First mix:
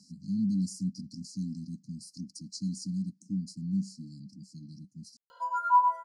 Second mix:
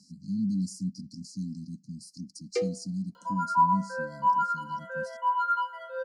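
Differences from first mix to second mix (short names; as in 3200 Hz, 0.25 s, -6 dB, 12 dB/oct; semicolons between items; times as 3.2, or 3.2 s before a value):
first sound: unmuted; second sound: entry -2.15 s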